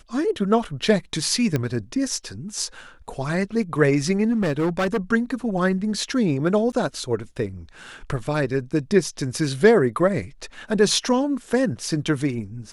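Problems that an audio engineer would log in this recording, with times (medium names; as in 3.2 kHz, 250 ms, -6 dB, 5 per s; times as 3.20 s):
1.56 s: pop -10 dBFS
4.31–4.98 s: clipped -18 dBFS
6.72–6.73 s: dropout 9.5 ms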